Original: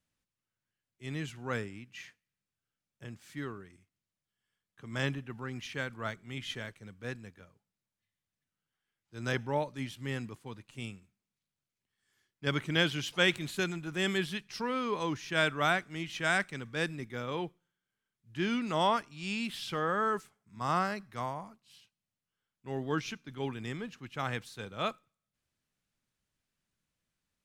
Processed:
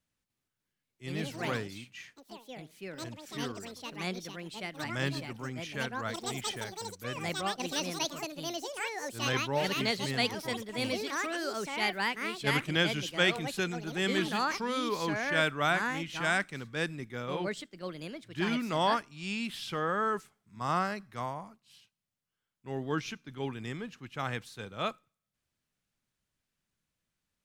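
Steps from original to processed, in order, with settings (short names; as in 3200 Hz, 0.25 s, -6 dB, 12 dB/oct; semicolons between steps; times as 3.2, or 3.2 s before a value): echoes that change speed 0.3 s, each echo +5 st, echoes 3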